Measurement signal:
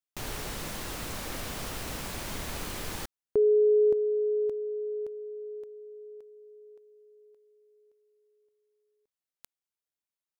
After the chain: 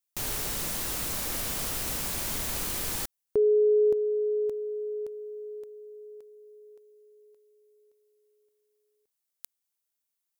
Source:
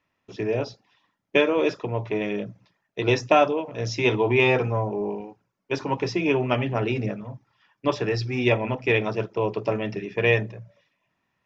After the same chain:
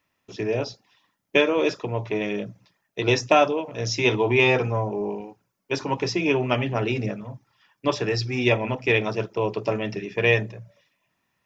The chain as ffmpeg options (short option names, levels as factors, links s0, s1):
-af "highshelf=f=5700:g=12"